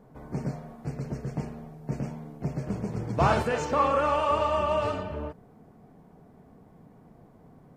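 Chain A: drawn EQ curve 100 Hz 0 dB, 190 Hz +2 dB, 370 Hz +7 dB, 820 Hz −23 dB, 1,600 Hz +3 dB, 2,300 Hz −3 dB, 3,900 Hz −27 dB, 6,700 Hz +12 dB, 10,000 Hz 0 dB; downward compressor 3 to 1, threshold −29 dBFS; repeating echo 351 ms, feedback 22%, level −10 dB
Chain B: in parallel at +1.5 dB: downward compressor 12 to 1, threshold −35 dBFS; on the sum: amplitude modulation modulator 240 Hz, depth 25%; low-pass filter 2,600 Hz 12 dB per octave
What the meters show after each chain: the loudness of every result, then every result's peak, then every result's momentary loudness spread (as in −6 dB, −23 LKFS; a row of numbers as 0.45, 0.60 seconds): −34.5, −28.5 LKFS; −18.0, −10.5 dBFS; 20, 11 LU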